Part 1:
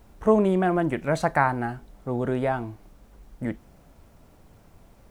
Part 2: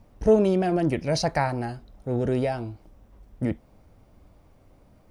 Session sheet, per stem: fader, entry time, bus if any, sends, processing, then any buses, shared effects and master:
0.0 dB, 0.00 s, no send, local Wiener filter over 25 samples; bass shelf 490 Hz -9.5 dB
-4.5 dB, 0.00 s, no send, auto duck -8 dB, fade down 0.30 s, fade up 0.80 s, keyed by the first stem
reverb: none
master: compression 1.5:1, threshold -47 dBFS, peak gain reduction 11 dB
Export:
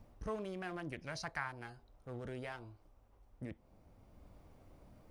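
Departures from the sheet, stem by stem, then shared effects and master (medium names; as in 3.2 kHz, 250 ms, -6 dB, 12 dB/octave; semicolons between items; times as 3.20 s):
stem 1 0.0 dB -> -8.5 dB; stem 2: polarity flipped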